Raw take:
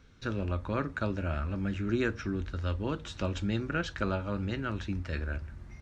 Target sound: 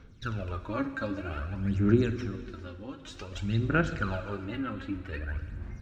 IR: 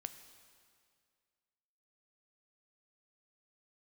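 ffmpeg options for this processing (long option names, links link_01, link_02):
-filter_complex "[0:a]asettb=1/sr,asplit=3[link_01][link_02][link_03];[link_01]atrim=end=2.354[link_04];[link_02]atrim=start=2.35:end=3.32,asetpts=PTS-STARTPTS,afade=type=in:duration=0.004:curve=qsin,afade=type=out:start_time=0.966:duration=0.004:curve=qsin,acompressor=threshold=-36dB:ratio=6[link_05];[link_03]atrim=start=3.316[link_06];[link_04][link_05]acrossfade=duration=0.004:curve1=hsin:curve2=qsin[link_07];[link_07][link_06]acrossfade=duration=0.004:curve1=qsin:curve2=hsin,asettb=1/sr,asplit=3[link_08][link_09][link_10];[link_08]atrim=end=4.444[link_11];[link_09]atrim=start=4.44:end=5.37,asetpts=PTS-STARTPTS,afade=type=in:duration=0.004:curve=qsin,afade=type=out:start_time=0.926:duration=0.004:curve=qsin,equalizer=frequency=5800:width_type=o:width=0.8:gain=-14.5[link_12];[link_10]atrim=start=5.366[link_13];[link_11][link_12]acrossfade=duration=0.004:curve1=hsin:curve2=qsin[link_14];[link_14][link_13]acrossfade=duration=0.004:curve1=qsin:curve2=hsin,aphaser=in_gain=1:out_gain=1:delay=3.8:decay=0.71:speed=0.53:type=sinusoidal[link_15];[1:a]atrim=start_sample=2205[link_16];[link_15][link_16]afir=irnorm=-1:irlink=0"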